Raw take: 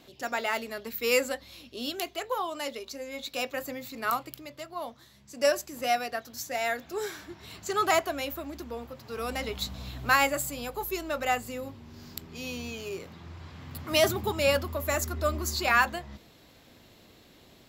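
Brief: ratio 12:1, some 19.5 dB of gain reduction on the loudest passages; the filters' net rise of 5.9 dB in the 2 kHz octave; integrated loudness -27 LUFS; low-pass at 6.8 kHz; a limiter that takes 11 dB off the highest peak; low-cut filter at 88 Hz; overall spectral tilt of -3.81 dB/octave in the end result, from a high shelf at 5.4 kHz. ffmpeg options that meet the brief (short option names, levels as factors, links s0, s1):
-af "highpass=88,lowpass=6800,equalizer=f=2000:t=o:g=8,highshelf=f=5400:g=-4,acompressor=threshold=0.0224:ratio=12,volume=5.01,alimiter=limit=0.158:level=0:latency=1"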